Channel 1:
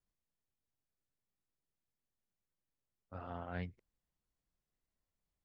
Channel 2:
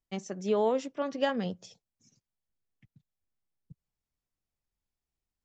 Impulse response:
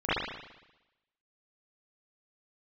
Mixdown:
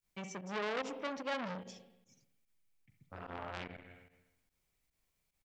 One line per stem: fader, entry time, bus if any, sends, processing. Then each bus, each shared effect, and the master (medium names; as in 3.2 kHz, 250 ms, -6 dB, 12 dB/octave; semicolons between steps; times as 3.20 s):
+1.0 dB, 0.00 s, send -14 dB, treble shelf 2.6 kHz +9 dB
-3.0 dB, 0.05 s, send -23 dB, peak limiter -21 dBFS, peak gain reduction 5.5 dB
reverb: on, RT60 1.0 s, pre-delay 38 ms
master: peaking EQ 2.3 kHz +8 dB 0.23 oct; volume shaper 147 bpm, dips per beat 1, -14 dB, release 79 ms; transformer saturation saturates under 2.2 kHz